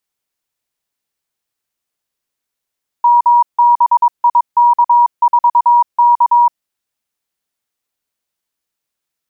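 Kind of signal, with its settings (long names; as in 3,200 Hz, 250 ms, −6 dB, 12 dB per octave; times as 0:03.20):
Morse code "MBIK4K" 22 words per minute 957 Hz −5.5 dBFS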